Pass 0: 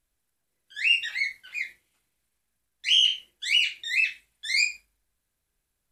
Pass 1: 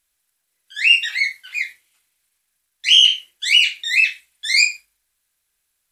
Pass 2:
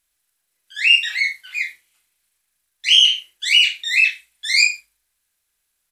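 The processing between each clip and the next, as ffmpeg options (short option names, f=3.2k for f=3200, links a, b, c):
-af "tiltshelf=f=760:g=-8.5,volume=1.5dB"
-filter_complex "[0:a]asplit=2[a][b];[b]adelay=36,volume=-7.5dB[c];[a][c]amix=inputs=2:normalize=0,volume=-1dB"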